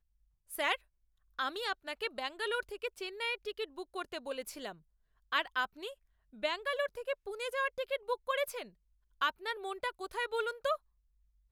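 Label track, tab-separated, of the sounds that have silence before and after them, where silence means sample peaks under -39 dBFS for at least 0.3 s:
0.520000	0.750000	sound
1.390000	4.710000	sound
5.320000	5.900000	sound
6.430000	8.630000	sound
9.210000	10.760000	sound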